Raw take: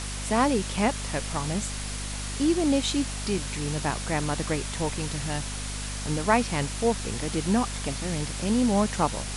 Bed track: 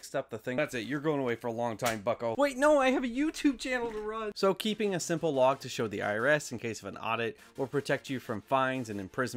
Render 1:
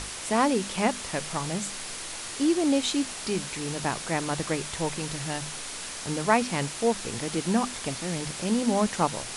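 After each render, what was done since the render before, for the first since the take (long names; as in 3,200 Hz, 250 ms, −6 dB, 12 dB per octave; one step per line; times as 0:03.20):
mains-hum notches 50/100/150/200/250 Hz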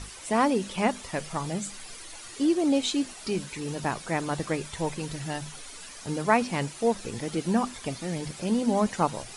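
broadband denoise 11 dB, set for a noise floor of −37 dBFS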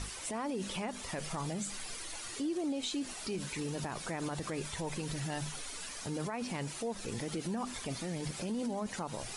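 downward compressor, threshold −26 dBFS, peak gain reduction 10 dB
brickwall limiter −28.5 dBFS, peak gain reduction 12 dB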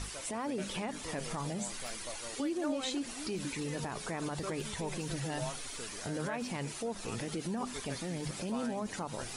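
mix in bed track −16 dB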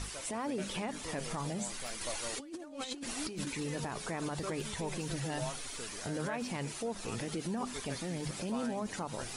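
0:02.01–0:03.47: compressor whose output falls as the input rises −39 dBFS, ratio −0.5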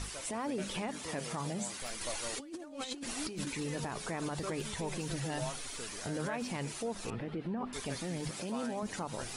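0:00.90–0:01.82: high-pass filter 80 Hz
0:07.10–0:07.73: high-frequency loss of the air 440 metres
0:08.29–0:08.83: high-pass filter 180 Hz 6 dB per octave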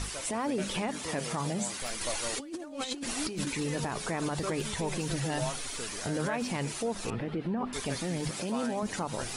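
level +5 dB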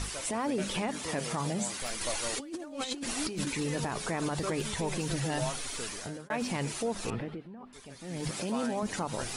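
0:05.87–0:06.30: fade out
0:07.15–0:08.30: duck −15 dB, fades 0.31 s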